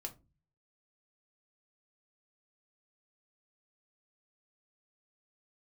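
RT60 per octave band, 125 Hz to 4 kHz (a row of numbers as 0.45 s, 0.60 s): 0.75 s, 0.50 s, 0.35 s, 0.25 s, 0.20 s, 0.15 s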